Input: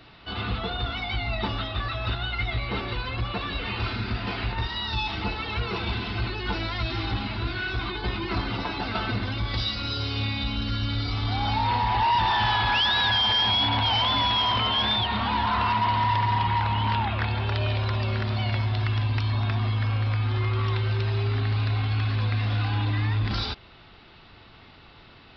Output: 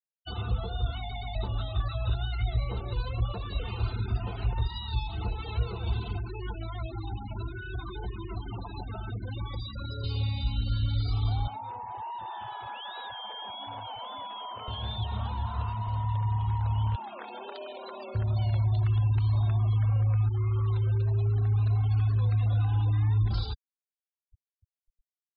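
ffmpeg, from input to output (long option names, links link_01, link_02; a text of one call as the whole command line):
ffmpeg -i in.wav -filter_complex "[0:a]asettb=1/sr,asplit=3[link_01][link_02][link_03];[link_01]atrim=end=6.164[link_04];[link_02]atrim=start=6.16:end=10.04,asetpts=PTS-STARTPTS,afade=type=in:duration=0.004:curve=qsin,afade=type=out:start_time=3.876:duration=0.004:curve=qsin,acrossover=split=190|2200[link_05][link_06][link_07];[link_05]acompressor=threshold=-36dB:ratio=4[link_08];[link_06]acompressor=threshold=-37dB:ratio=4[link_09];[link_07]acompressor=threshold=-44dB:ratio=4[link_10];[link_08][link_09][link_10]amix=inputs=3:normalize=0[link_11];[link_03]atrim=start=10.036[link_12];[link_04][link_11]acrossfade=duration=0.004:curve1=hsin:curve2=qsin[link_13];[link_13][link_12]acrossfade=duration=0.004:curve1=qsin:curve2=hsin,asettb=1/sr,asplit=3[link_14][link_15][link_16];[link_14]atrim=end=11.474[link_17];[link_15]atrim=start=11.47:end=14.68,asetpts=PTS-STARTPTS,afade=type=in:duration=0.004:curve=qsin,afade=type=out:start_time=3.206:duration=0.004:curve=qsin,highpass=320,lowpass=2600[link_18];[link_16]atrim=start=14.676[link_19];[link_17][link_18]acrossfade=duration=0.004:curve1=hsin:curve2=qsin[link_20];[link_20][link_19]acrossfade=duration=0.004:curve1=qsin:curve2=hsin,asettb=1/sr,asplit=3[link_21][link_22][link_23];[link_21]atrim=end=16.954[link_24];[link_22]atrim=start=16.95:end=18.15,asetpts=PTS-STARTPTS,afade=type=in:duration=0.004:curve=qsin,afade=type=out:start_time=1.196:duration=0.004:curve=qsin,highpass=frequency=240:width=0.5412,highpass=frequency=240:width=1.3066[link_25];[link_23]atrim=start=18.146[link_26];[link_24][link_25]acrossfade=duration=0.004:curve1=hsin:curve2=qsin[link_27];[link_27][link_26]acrossfade=duration=0.004:curve1=qsin:curve2=hsin,asplit=5[link_28][link_29][link_30][link_31][link_32];[link_28]atrim=end=1.112[link_33];[link_29]atrim=start=0.988:end=1.112[link_34];[link_30]atrim=start=0.988:end=1.112[link_35];[link_31]atrim=start=1.348:end=20.29,asetpts=PTS-STARTPTS,afade=type=out:start_time=18.938:duration=0.004:curve=hsin[link_36];[link_32]atrim=start=20.29,asetpts=PTS-STARTPTS,afade=type=in:duration=2.39:curve=log[link_37];[link_33][link_34]acrossfade=duration=0.004:curve1=hsin:curve2=hsin[link_38];[link_38][link_35]acrossfade=duration=0.004:curve1=hsin:curve2=hsin[link_39];[link_36][link_37]concat=n=2:v=0:a=1[link_40];[link_39][link_40]acrossfade=duration=0.004:curve1=hsin:curve2=hsin,afftfilt=real='re*gte(hypot(re,im),0.0355)':imag='im*gte(hypot(re,im),0.0355)':win_size=1024:overlap=0.75,equalizer=frequency=250:width_type=o:width=1:gain=-8,equalizer=frequency=500:width_type=o:width=1:gain=5,equalizer=frequency=2000:width_type=o:width=1:gain=-11,acrossover=split=140[link_41][link_42];[link_42]acompressor=threshold=-42dB:ratio=5[link_43];[link_41][link_43]amix=inputs=2:normalize=0,volume=3dB" out.wav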